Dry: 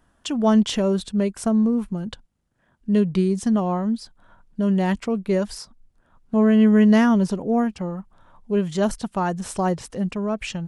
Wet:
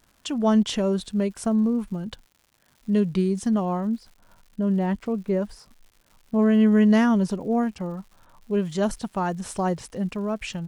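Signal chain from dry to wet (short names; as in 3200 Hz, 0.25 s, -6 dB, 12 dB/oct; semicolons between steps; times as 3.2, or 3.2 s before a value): 3.87–6.39 high shelf 2200 Hz -12 dB; crackle 210/s -42 dBFS; gain -2.5 dB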